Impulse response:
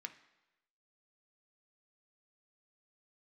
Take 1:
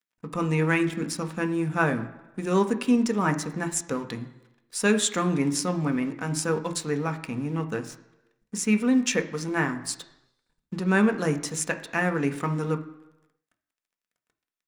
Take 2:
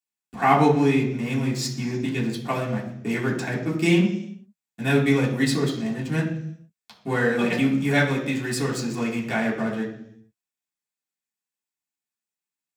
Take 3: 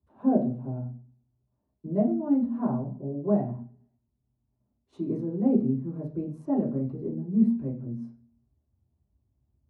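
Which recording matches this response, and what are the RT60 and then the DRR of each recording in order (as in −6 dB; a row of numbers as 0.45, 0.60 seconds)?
1; 1.0 s, 0.70 s, non-exponential decay; 6.0, −5.5, −8.0 decibels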